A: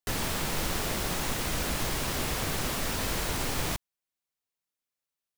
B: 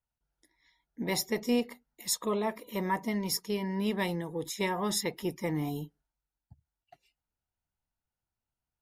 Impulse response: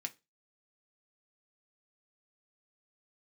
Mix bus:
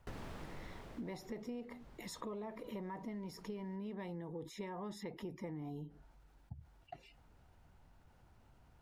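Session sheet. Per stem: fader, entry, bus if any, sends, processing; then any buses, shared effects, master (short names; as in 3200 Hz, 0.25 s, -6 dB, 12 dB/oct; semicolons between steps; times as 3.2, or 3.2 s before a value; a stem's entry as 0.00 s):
-8.5 dB, 0.00 s, no send, auto duck -20 dB, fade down 1.65 s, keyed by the second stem
-5.5 dB, 0.00 s, no send, fast leveller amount 50%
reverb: off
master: LPF 1100 Hz 6 dB/oct; compressor 6:1, threshold -42 dBFS, peak gain reduction 12.5 dB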